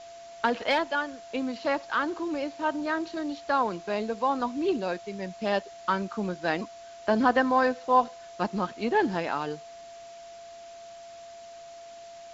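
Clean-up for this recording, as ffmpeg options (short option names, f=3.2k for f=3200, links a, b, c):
-af "bandreject=f=680:w=30,afwtdn=0.0028"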